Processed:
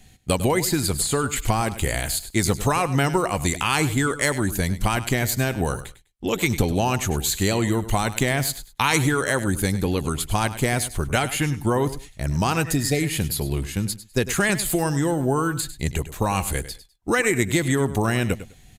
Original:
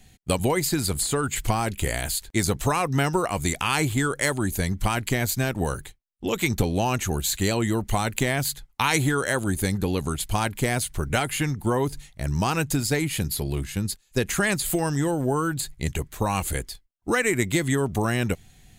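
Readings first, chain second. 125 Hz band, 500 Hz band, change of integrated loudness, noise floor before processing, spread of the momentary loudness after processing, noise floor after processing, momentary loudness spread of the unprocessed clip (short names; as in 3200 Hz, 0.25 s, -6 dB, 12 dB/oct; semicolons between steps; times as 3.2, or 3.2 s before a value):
+2.0 dB, +2.0 dB, +2.0 dB, -59 dBFS, 6 LU, -51 dBFS, 6 LU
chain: spectral repair 12.67–13.1, 770–2000 Hz after; on a send: feedback echo 0.101 s, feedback 20%, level -14 dB; on the sum: downsampling 32000 Hz; gain +2 dB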